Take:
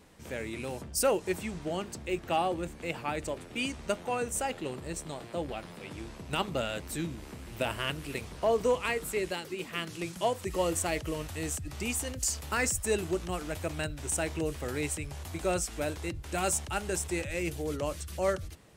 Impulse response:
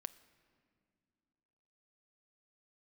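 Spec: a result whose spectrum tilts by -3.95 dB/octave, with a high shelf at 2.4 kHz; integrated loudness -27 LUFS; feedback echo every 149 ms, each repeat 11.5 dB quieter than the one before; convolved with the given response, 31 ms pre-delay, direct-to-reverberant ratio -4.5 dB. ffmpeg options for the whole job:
-filter_complex "[0:a]highshelf=f=2400:g=3,aecho=1:1:149|298|447:0.266|0.0718|0.0194,asplit=2[s0][s1];[1:a]atrim=start_sample=2205,adelay=31[s2];[s1][s2]afir=irnorm=-1:irlink=0,volume=2.66[s3];[s0][s3]amix=inputs=2:normalize=0,volume=0.841"

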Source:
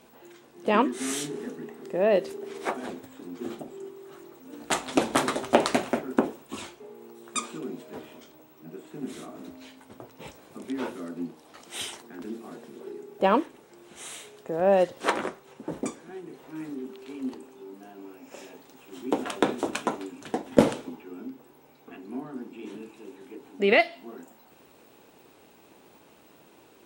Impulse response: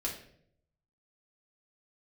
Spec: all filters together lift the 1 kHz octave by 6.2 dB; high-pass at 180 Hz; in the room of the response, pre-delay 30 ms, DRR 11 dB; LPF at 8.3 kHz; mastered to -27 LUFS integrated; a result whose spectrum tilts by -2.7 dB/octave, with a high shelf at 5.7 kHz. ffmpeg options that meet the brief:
-filter_complex "[0:a]highpass=180,lowpass=8300,equalizer=f=1000:t=o:g=8,highshelf=f=5700:g=-4,asplit=2[s0][s1];[1:a]atrim=start_sample=2205,adelay=30[s2];[s1][s2]afir=irnorm=-1:irlink=0,volume=0.211[s3];[s0][s3]amix=inputs=2:normalize=0,volume=0.841"

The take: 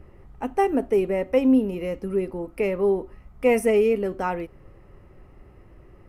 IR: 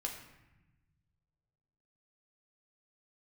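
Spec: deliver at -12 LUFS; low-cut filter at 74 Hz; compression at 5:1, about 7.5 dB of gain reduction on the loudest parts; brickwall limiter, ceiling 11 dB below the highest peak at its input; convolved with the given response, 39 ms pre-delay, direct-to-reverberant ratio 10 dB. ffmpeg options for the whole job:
-filter_complex "[0:a]highpass=74,acompressor=threshold=0.0708:ratio=5,alimiter=level_in=1.19:limit=0.0631:level=0:latency=1,volume=0.841,asplit=2[s0][s1];[1:a]atrim=start_sample=2205,adelay=39[s2];[s1][s2]afir=irnorm=-1:irlink=0,volume=0.299[s3];[s0][s3]amix=inputs=2:normalize=0,volume=11.9"

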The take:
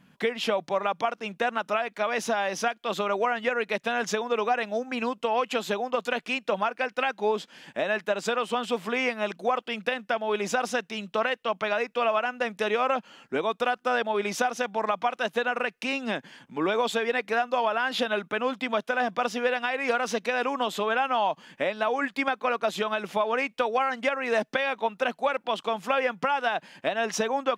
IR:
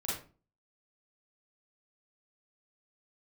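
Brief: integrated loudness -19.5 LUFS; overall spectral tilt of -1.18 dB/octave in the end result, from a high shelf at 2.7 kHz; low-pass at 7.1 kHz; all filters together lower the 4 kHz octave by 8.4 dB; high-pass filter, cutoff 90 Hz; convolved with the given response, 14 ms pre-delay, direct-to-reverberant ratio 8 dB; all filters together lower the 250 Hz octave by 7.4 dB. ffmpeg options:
-filter_complex "[0:a]highpass=90,lowpass=7100,equalizer=f=250:t=o:g=-8.5,highshelf=f=2700:g=-6.5,equalizer=f=4000:t=o:g=-6,asplit=2[s0][s1];[1:a]atrim=start_sample=2205,adelay=14[s2];[s1][s2]afir=irnorm=-1:irlink=0,volume=0.266[s3];[s0][s3]amix=inputs=2:normalize=0,volume=2.99"

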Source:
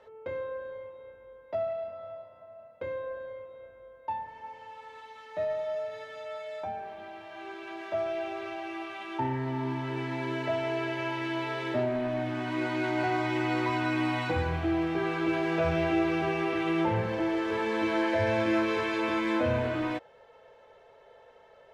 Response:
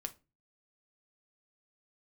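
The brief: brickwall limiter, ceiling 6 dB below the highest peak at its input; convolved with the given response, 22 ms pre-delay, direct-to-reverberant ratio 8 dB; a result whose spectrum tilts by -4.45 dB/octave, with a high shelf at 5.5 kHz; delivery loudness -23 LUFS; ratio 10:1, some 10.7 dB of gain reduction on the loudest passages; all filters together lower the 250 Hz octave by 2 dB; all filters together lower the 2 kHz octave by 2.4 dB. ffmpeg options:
-filter_complex "[0:a]equalizer=f=250:t=o:g=-3,equalizer=f=2000:t=o:g=-3.5,highshelf=f=5500:g=3.5,acompressor=threshold=0.0178:ratio=10,alimiter=level_in=2.82:limit=0.0631:level=0:latency=1,volume=0.355,asplit=2[s0][s1];[1:a]atrim=start_sample=2205,adelay=22[s2];[s1][s2]afir=irnorm=-1:irlink=0,volume=0.501[s3];[s0][s3]amix=inputs=2:normalize=0,volume=8.91"

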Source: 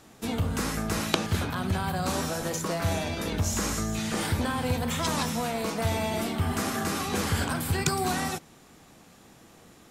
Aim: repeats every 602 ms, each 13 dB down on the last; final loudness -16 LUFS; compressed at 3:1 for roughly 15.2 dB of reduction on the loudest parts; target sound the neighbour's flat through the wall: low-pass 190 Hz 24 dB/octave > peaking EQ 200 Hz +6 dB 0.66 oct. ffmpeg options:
-af "acompressor=threshold=0.00631:ratio=3,lowpass=f=190:w=0.5412,lowpass=f=190:w=1.3066,equalizer=f=200:t=o:w=0.66:g=6,aecho=1:1:602|1204|1806:0.224|0.0493|0.0108,volume=31.6"

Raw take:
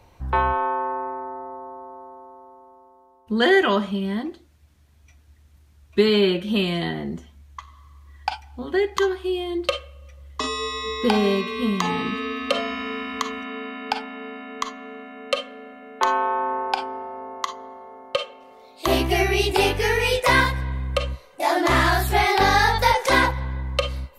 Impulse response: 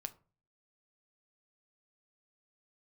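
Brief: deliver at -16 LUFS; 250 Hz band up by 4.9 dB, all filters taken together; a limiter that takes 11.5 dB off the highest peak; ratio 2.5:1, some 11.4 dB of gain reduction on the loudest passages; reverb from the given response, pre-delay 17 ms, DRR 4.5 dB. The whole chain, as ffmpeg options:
-filter_complex "[0:a]equalizer=f=250:t=o:g=6.5,acompressor=threshold=0.0398:ratio=2.5,alimiter=limit=0.075:level=0:latency=1,asplit=2[s0][s1];[1:a]atrim=start_sample=2205,adelay=17[s2];[s1][s2]afir=irnorm=-1:irlink=0,volume=0.841[s3];[s0][s3]amix=inputs=2:normalize=0,volume=5.62"

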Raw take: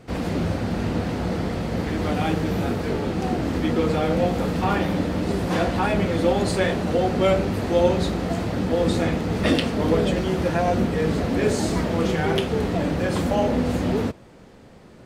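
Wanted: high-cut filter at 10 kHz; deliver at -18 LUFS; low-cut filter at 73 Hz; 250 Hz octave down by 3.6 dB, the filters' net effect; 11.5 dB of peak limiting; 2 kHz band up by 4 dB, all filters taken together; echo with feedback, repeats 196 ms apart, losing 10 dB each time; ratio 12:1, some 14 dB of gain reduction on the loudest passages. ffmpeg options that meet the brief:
-af "highpass=73,lowpass=10000,equalizer=f=250:t=o:g=-5,equalizer=f=2000:t=o:g=5,acompressor=threshold=0.0355:ratio=12,alimiter=level_in=1.41:limit=0.0631:level=0:latency=1,volume=0.708,aecho=1:1:196|392|588|784:0.316|0.101|0.0324|0.0104,volume=7.5"

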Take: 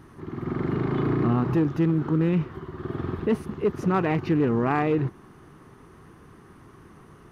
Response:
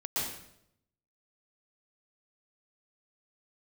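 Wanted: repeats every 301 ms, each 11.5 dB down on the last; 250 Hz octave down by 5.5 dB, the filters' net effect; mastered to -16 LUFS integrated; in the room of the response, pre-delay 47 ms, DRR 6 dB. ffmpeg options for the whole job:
-filter_complex "[0:a]equalizer=f=250:t=o:g=-8.5,aecho=1:1:301|602|903:0.266|0.0718|0.0194,asplit=2[s0][s1];[1:a]atrim=start_sample=2205,adelay=47[s2];[s1][s2]afir=irnorm=-1:irlink=0,volume=0.251[s3];[s0][s3]amix=inputs=2:normalize=0,volume=3.76"

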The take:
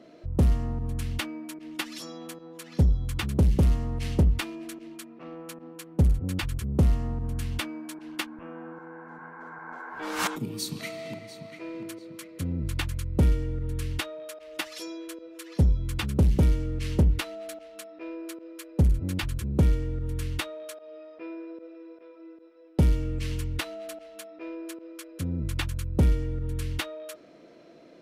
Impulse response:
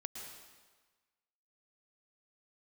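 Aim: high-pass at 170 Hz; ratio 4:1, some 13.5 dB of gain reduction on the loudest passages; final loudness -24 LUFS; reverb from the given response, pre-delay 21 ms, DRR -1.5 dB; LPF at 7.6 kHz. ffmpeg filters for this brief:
-filter_complex "[0:a]highpass=170,lowpass=7600,acompressor=threshold=0.0141:ratio=4,asplit=2[s0][s1];[1:a]atrim=start_sample=2205,adelay=21[s2];[s1][s2]afir=irnorm=-1:irlink=0,volume=1.5[s3];[s0][s3]amix=inputs=2:normalize=0,volume=5.01"

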